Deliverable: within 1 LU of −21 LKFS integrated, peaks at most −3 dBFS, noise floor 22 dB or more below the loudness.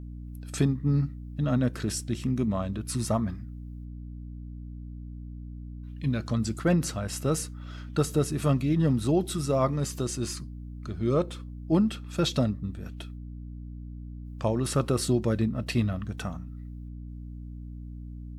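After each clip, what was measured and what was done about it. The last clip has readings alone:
mains hum 60 Hz; hum harmonics up to 300 Hz; level of the hum −37 dBFS; integrated loudness −28.0 LKFS; sample peak −12.5 dBFS; target loudness −21.0 LKFS
→ hum removal 60 Hz, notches 5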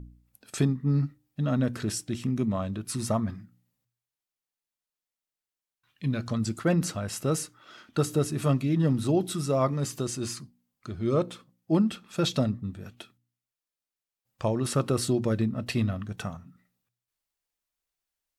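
mains hum none found; integrated loudness −28.5 LKFS; sample peak −13.0 dBFS; target loudness −21.0 LKFS
→ level +7.5 dB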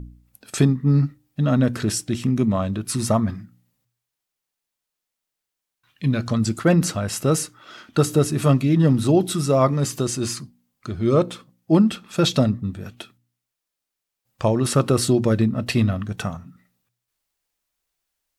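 integrated loudness −21.0 LKFS; sample peak −5.5 dBFS; background noise floor −84 dBFS

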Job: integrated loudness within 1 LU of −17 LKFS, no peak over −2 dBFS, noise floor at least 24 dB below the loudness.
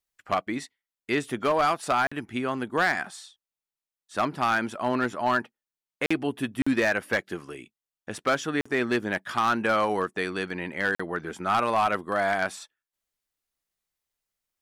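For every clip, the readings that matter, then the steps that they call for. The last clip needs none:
share of clipped samples 0.8%; peaks flattened at −16.5 dBFS; number of dropouts 5; longest dropout 45 ms; integrated loudness −27.0 LKFS; sample peak −16.5 dBFS; target loudness −17.0 LKFS
→ clipped peaks rebuilt −16.5 dBFS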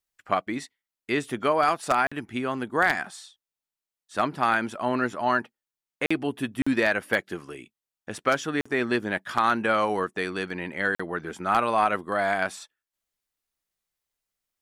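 share of clipped samples 0.0%; number of dropouts 5; longest dropout 45 ms
→ repair the gap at 0:02.07/0:06.06/0:06.62/0:08.61/0:10.95, 45 ms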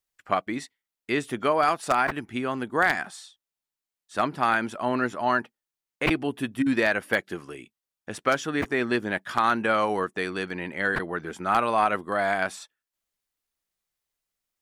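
number of dropouts 0; integrated loudness −26.0 LKFS; sample peak −7.5 dBFS; target loudness −17.0 LKFS
→ level +9 dB
brickwall limiter −2 dBFS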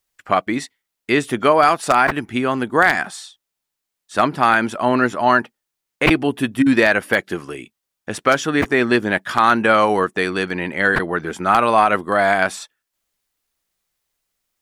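integrated loudness −17.5 LKFS; sample peak −2.0 dBFS; background noise floor −81 dBFS

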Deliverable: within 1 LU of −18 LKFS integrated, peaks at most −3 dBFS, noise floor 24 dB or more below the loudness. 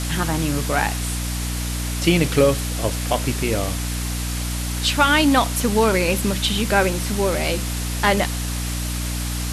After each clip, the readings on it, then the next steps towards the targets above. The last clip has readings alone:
mains hum 60 Hz; hum harmonics up to 300 Hz; level of the hum −23 dBFS; background noise floor −25 dBFS; target noise floor −45 dBFS; integrated loudness −21.0 LKFS; sample peak −3.0 dBFS; target loudness −18.0 LKFS
→ hum removal 60 Hz, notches 5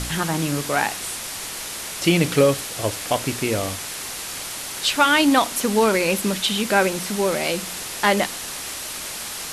mains hum none found; background noise floor −32 dBFS; target noise floor −46 dBFS
→ broadband denoise 14 dB, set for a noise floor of −32 dBFS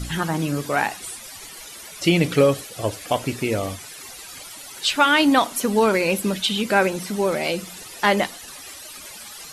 background noise floor −40 dBFS; target noise floor −45 dBFS
→ broadband denoise 6 dB, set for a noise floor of −40 dBFS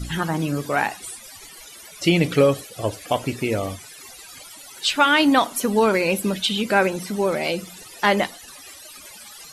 background noise floor −43 dBFS; target noise floor −45 dBFS
→ broadband denoise 6 dB, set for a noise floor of −43 dBFS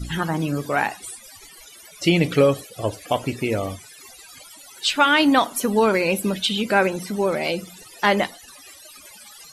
background noise floor −46 dBFS; integrated loudness −21.5 LKFS; sample peak −4.5 dBFS; target loudness −18.0 LKFS
→ level +3.5 dB
brickwall limiter −3 dBFS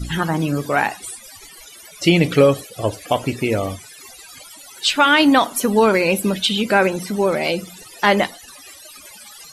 integrated loudness −18.0 LKFS; sample peak −3.0 dBFS; background noise floor −42 dBFS

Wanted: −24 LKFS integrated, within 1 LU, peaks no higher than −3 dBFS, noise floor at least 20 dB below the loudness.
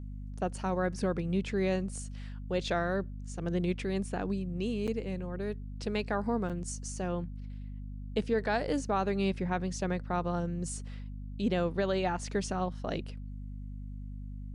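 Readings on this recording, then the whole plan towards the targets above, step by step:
number of dropouts 2; longest dropout 7.4 ms; mains hum 50 Hz; hum harmonics up to 250 Hz; level of the hum −38 dBFS; integrated loudness −33.5 LKFS; sample peak −18.5 dBFS; target loudness −24.0 LKFS
→ repair the gap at 0:04.87/0:06.49, 7.4 ms
hum removal 50 Hz, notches 5
level +9.5 dB

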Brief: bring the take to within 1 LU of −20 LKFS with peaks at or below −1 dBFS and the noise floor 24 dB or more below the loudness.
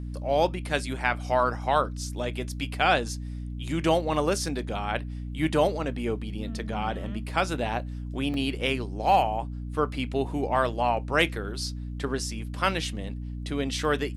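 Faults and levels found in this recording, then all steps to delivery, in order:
number of dropouts 1; longest dropout 1.6 ms; mains hum 60 Hz; hum harmonics up to 300 Hz; level of the hum −32 dBFS; integrated loudness −28.0 LKFS; sample peak −8.0 dBFS; target loudness −20.0 LKFS
→ repair the gap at 0:08.34, 1.6 ms
mains-hum notches 60/120/180/240/300 Hz
level +8 dB
brickwall limiter −1 dBFS

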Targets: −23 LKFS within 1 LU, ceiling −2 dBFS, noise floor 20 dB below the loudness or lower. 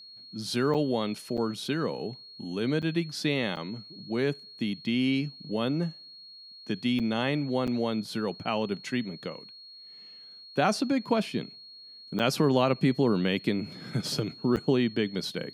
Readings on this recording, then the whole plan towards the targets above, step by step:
number of dropouts 8; longest dropout 7.1 ms; interfering tone 4,300 Hz; level of the tone −46 dBFS; integrated loudness −29.0 LKFS; sample peak −10.5 dBFS; target loudness −23.0 LKFS
→ repair the gap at 0:00.74/0:01.37/0:02.82/0:03.56/0:06.99/0:07.67/0:12.19/0:14.56, 7.1 ms
notch filter 4,300 Hz, Q 30
level +6 dB

